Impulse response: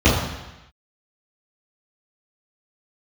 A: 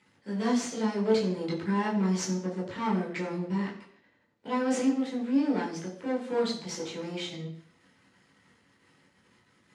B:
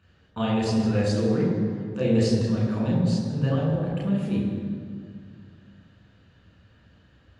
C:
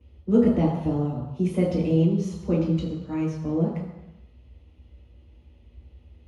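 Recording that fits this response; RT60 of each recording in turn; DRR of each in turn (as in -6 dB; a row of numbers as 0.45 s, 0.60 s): C; 0.60 s, 2.1 s, 1.0 s; -6.0 dB, -5.0 dB, -13.5 dB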